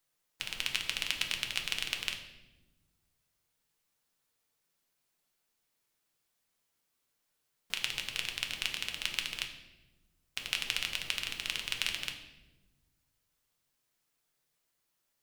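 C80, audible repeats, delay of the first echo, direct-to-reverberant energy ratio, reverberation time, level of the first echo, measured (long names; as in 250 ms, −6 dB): 11.0 dB, no echo audible, no echo audible, 3.0 dB, 1.1 s, no echo audible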